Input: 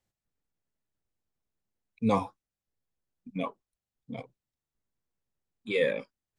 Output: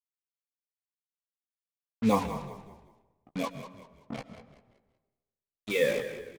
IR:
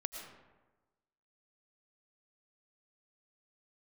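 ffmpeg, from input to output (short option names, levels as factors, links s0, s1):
-filter_complex "[0:a]acrusher=bits=5:mix=0:aa=0.5,asplit=5[s0][s1][s2][s3][s4];[s1]adelay=190,afreqshift=-39,volume=0.251[s5];[s2]adelay=380,afreqshift=-78,volume=0.0881[s6];[s3]adelay=570,afreqshift=-117,volume=0.0309[s7];[s4]adelay=760,afreqshift=-156,volume=0.0107[s8];[s0][s5][s6][s7][s8]amix=inputs=5:normalize=0,asplit=2[s9][s10];[1:a]atrim=start_sample=2205,adelay=14[s11];[s10][s11]afir=irnorm=-1:irlink=0,volume=0.398[s12];[s9][s12]amix=inputs=2:normalize=0"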